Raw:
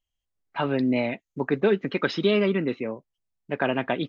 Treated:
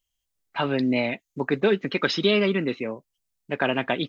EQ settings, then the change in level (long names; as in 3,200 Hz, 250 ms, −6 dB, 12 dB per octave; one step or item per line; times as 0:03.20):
high-shelf EQ 3,100 Hz +10.5 dB
0.0 dB